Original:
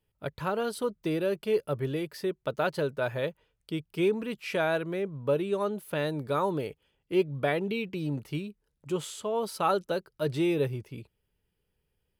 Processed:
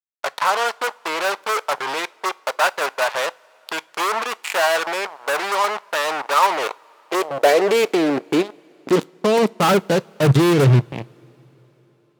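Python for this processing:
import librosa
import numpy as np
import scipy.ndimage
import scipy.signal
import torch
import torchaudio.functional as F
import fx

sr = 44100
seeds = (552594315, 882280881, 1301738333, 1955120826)

y = scipy.signal.sosfilt(scipy.signal.butter(2, 5400.0, 'lowpass', fs=sr, output='sos'), x)
y = fx.high_shelf(y, sr, hz=3600.0, db=-5.0)
y = fx.level_steps(y, sr, step_db=9)
y = fx.fuzz(y, sr, gain_db=43.0, gate_db=-42.0)
y = fx.filter_sweep_highpass(y, sr, from_hz=920.0, to_hz=130.0, start_s=6.37, end_s=10.28, q=2.1)
y = fx.rev_double_slope(y, sr, seeds[0], early_s=0.27, late_s=4.5, knee_db=-21, drr_db=19.0)
y = y * 10.0 ** (-1.0 / 20.0)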